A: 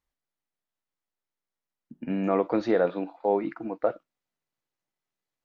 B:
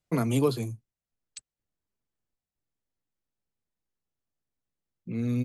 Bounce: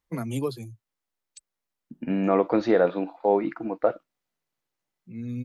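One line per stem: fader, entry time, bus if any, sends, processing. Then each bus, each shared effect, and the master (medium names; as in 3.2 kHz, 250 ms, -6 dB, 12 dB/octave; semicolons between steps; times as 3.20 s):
+3.0 dB, 0.00 s, no send, none
-3.0 dB, 0.00 s, no send, expander on every frequency bin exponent 1.5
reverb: none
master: none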